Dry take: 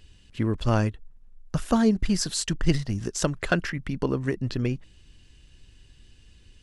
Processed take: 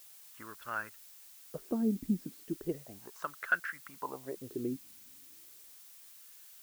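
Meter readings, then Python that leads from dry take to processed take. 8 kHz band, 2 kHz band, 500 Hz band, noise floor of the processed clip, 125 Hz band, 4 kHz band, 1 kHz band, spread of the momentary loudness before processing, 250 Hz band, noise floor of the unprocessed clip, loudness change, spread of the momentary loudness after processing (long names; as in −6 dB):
−18.0 dB, −3.5 dB, −12.0 dB, −55 dBFS, −20.5 dB, −21.5 dB, −8.0 dB, 9 LU, −10.5 dB, −54 dBFS, −11.0 dB, 19 LU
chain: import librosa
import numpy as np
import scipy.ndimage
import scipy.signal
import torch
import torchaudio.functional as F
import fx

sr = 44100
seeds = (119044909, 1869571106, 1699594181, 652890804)

y = fx.wah_lfo(x, sr, hz=0.35, low_hz=250.0, high_hz=1500.0, q=4.7)
y = fx.dmg_noise_colour(y, sr, seeds[0], colour='blue', level_db=-55.0)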